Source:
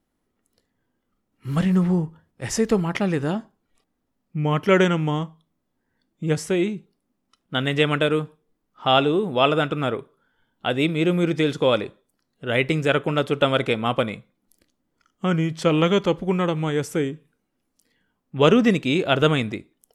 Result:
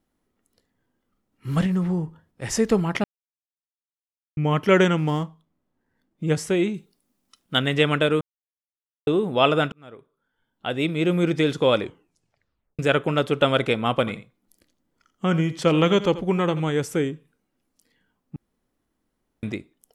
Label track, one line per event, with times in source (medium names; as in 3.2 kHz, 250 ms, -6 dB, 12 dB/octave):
1.660000	2.520000	compression 1.5:1, threshold -27 dBFS
3.040000	4.370000	mute
4.980000	6.240000	median filter over 9 samples
6.740000	7.590000	treble shelf 3.2 kHz +11.5 dB
8.210000	9.070000	mute
9.720000	11.260000	fade in
11.800000	11.800000	tape stop 0.99 s
13.910000	16.600000	delay 85 ms -15 dB
18.360000	19.430000	room tone